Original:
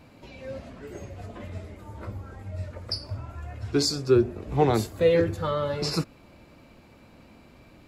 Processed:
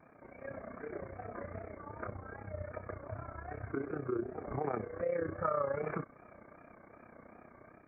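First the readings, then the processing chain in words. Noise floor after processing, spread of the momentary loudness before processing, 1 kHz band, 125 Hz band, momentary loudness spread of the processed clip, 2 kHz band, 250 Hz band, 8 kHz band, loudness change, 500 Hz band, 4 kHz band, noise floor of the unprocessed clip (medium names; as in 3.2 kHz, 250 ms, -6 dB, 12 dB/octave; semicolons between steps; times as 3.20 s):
-60 dBFS, 18 LU, -7.0 dB, -14.0 dB, 22 LU, -7.5 dB, -13.0 dB, under -40 dB, -14.0 dB, -11.5 dB, under -40 dB, -53 dBFS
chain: rippled Chebyshev low-pass 2.3 kHz, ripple 9 dB; band-stop 540 Hz, Q 12; pre-echo 236 ms -23 dB; compression 1.5:1, threshold -39 dBFS, peak gain reduction 7.5 dB; bass shelf 72 Hz -11 dB; peak limiter -31 dBFS, peak gain reduction 10.5 dB; AM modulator 31 Hz, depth 60%; level rider gain up to 4 dB; peaking EQ 1.2 kHz +13 dB 0.27 oct; vibrato 2.6 Hz 73 cents; trim +2 dB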